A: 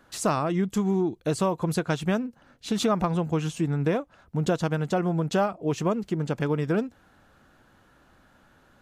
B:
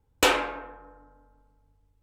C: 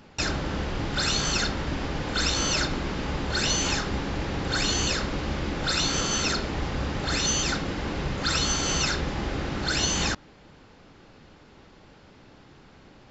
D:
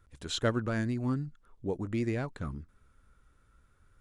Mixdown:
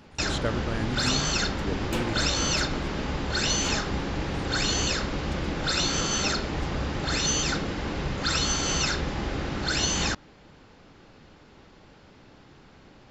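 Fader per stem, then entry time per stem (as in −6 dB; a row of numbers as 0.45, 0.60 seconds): −16.0, −13.5, −0.5, −1.0 decibels; 0.85, 1.70, 0.00, 0.00 seconds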